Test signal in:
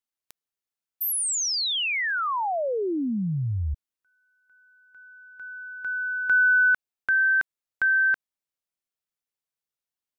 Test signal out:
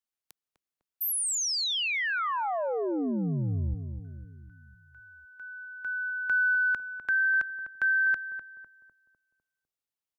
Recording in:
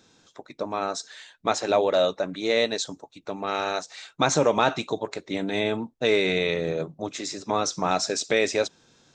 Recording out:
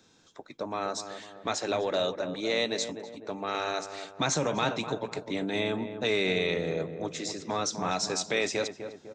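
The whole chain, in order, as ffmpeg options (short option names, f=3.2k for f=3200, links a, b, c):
-filter_complex "[0:a]acrossover=split=220|1800[a][b][c];[b]acompressor=threshold=-24dB:ratio=6:attack=1.6:release=21:knee=2.83:detection=peak[d];[a][d][c]amix=inputs=3:normalize=0,asplit=2[e][f];[f]adelay=251,lowpass=f=1.1k:p=1,volume=-8dB,asplit=2[g][h];[h]adelay=251,lowpass=f=1.1k:p=1,volume=0.52,asplit=2[i][j];[j]adelay=251,lowpass=f=1.1k:p=1,volume=0.52,asplit=2[k][l];[l]adelay=251,lowpass=f=1.1k:p=1,volume=0.52,asplit=2[m][n];[n]adelay=251,lowpass=f=1.1k:p=1,volume=0.52,asplit=2[o][p];[p]adelay=251,lowpass=f=1.1k:p=1,volume=0.52[q];[e][g][i][k][m][o][q]amix=inputs=7:normalize=0,volume=-3dB"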